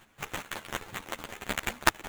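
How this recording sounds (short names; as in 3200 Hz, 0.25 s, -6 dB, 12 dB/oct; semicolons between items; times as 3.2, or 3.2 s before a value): aliases and images of a low sample rate 5000 Hz, jitter 20%; chopped level 5.4 Hz, depth 65%, duty 20%; a shimmering, thickened sound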